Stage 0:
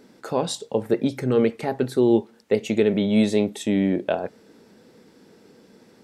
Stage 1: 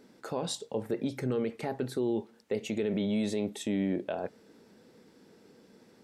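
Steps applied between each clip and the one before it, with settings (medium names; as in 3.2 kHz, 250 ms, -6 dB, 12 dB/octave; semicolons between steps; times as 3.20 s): peak limiter -16 dBFS, peak gain reduction 8.5 dB; trim -6 dB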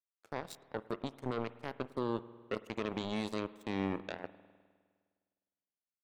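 power-law waveshaper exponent 3; spring tank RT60 1.7 s, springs 51 ms, chirp 80 ms, DRR 16 dB; trim -1.5 dB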